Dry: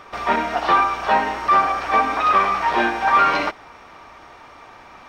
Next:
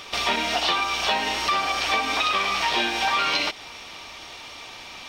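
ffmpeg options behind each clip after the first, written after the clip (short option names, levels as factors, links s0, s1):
-af "highshelf=f=2200:t=q:w=1.5:g=13,acompressor=threshold=0.1:ratio=6"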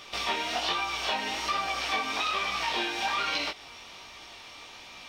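-af "flanger=delay=16.5:depth=7.1:speed=1.2,volume=0.668"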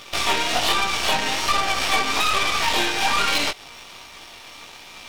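-af "aeval=exprs='0.158*(cos(1*acos(clip(val(0)/0.158,-1,1)))-cos(1*PI/2))+0.0224*(cos(8*acos(clip(val(0)/0.158,-1,1)))-cos(8*PI/2))':c=same,aeval=exprs='sgn(val(0))*max(abs(val(0))-0.002,0)':c=same,volume=2.51"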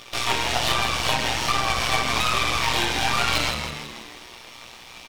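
-filter_complex "[0:a]asplit=8[s0][s1][s2][s3][s4][s5][s6][s7];[s1]adelay=162,afreqshift=-74,volume=0.447[s8];[s2]adelay=324,afreqshift=-148,volume=0.245[s9];[s3]adelay=486,afreqshift=-222,volume=0.135[s10];[s4]adelay=648,afreqshift=-296,volume=0.0741[s11];[s5]adelay=810,afreqshift=-370,volume=0.0407[s12];[s6]adelay=972,afreqshift=-444,volume=0.0224[s13];[s7]adelay=1134,afreqshift=-518,volume=0.0123[s14];[s0][s8][s9][s10][s11][s12][s13][s14]amix=inputs=8:normalize=0,tremolo=f=120:d=0.621"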